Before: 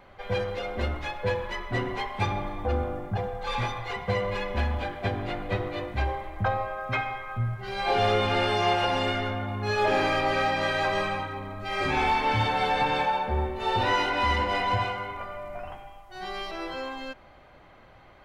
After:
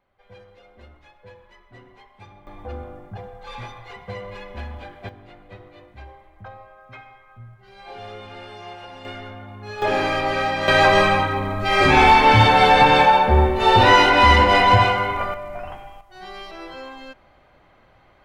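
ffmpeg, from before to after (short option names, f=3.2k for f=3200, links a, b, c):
-af "asetnsamples=n=441:p=0,asendcmd='2.47 volume volume -6.5dB;5.09 volume volume -14dB;9.05 volume volume -7dB;9.82 volume volume 3dB;10.68 volume volume 12dB;15.34 volume volume 5dB;16.01 volume volume -2dB',volume=-18.5dB"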